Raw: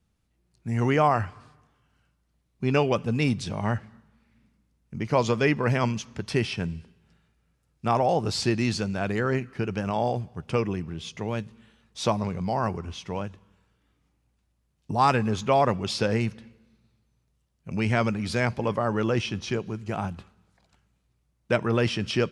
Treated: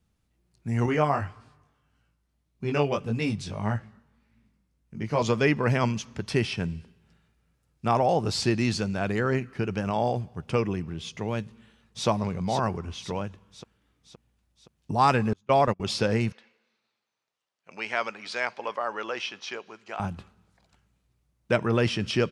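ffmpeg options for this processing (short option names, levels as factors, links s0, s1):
-filter_complex "[0:a]asettb=1/sr,asplit=3[s0][s1][s2];[s0]atrim=end=0.864[s3];[s1]atrim=start=0.86:end=5.22,asetpts=PTS-STARTPTS,afade=t=in:d=0.004:c=qsin,afade=t=out:st=4.356:d=0.004:c=qsin,flanger=delay=17.5:depth=3.9:speed=1.7[s4];[s2]atrim=start=5.216[s5];[s3][s4]acrossfade=d=0.004:c1=hsin:c2=qsin[s6];[s6][s5]acrossfade=d=0.004:c1=qsin:c2=hsin,asplit=2[s7][s8];[s8]afade=t=in:st=11.44:d=0.01,afade=t=out:st=12.07:d=0.01,aecho=0:1:520|1040|1560|2080|2600|3120|3640:0.562341|0.309288|0.170108|0.0935595|0.0514577|0.0283018|0.015566[s9];[s7][s9]amix=inputs=2:normalize=0,asettb=1/sr,asplit=3[s10][s11][s12];[s10]atrim=end=15.334[s13];[s11]atrim=start=15.33:end=15.8,asetpts=PTS-STARTPTS,afade=t=in:d=0.004:c=qsin,afade=t=out:st=0.466:d=0.004:c=qsin,agate=range=0.0224:threshold=0.0631:ratio=16:release=100:detection=peak[s14];[s12]atrim=start=15.796[s15];[s13][s14]acrossfade=d=0.004:c1=hsin:c2=qsin[s16];[s16][s15]acrossfade=d=0.004:c1=qsin:c2=hsin,asettb=1/sr,asplit=3[s17][s18][s19];[s17]atrim=end=16.324[s20];[s18]atrim=start=16.32:end=20,asetpts=PTS-STARTPTS,afade=t=in:d=0.004:c=qsin,afade=t=out:st=3.676:d=0.004:c=qsin,highpass=700,lowpass=5600[s21];[s19]atrim=start=19.996[s22];[s20][s21]acrossfade=d=0.004:c1=hsin:c2=qsin[s23];[s23][s22]acrossfade=d=0.004:c1=qsin:c2=hsin"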